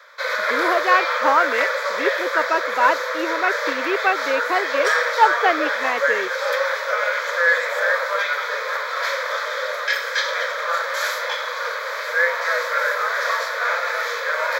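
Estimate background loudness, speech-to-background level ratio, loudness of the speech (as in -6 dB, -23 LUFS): -21.5 LUFS, -1.0 dB, -22.5 LUFS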